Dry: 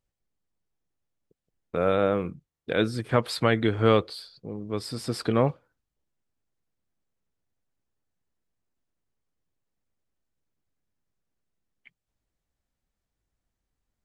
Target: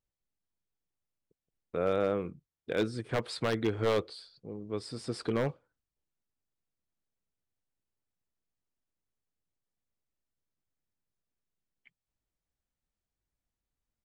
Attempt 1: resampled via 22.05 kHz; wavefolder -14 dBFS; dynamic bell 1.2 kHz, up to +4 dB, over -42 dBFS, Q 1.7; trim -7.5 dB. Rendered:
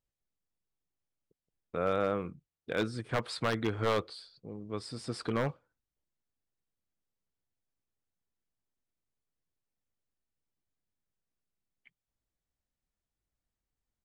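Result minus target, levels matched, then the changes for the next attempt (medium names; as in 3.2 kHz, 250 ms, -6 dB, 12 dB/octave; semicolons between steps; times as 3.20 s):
1 kHz band +3.5 dB
change: dynamic bell 400 Hz, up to +4 dB, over -42 dBFS, Q 1.7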